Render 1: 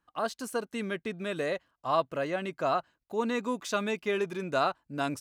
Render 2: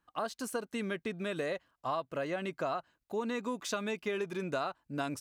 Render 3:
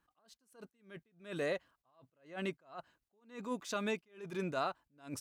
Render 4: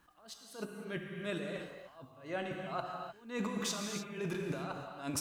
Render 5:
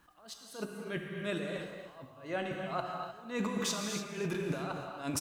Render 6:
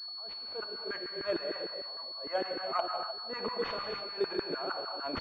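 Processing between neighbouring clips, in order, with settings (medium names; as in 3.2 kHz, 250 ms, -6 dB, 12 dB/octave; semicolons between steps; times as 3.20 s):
compression, threshold -31 dBFS, peak gain reduction 10 dB
attacks held to a fixed rise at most 160 dB/s
compressor with a negative ratio -45 dBFS, ratio -1; gated-style reverb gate 330 ms flat, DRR 1.5 dB; trim +5.5 dB
delay 243 ms -12.5 dB; trim +2.5 dB
LFO high-pass saw down 6.6 Hz 320–1500 Hz; class-D stage that switches slowly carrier 4.4 kHz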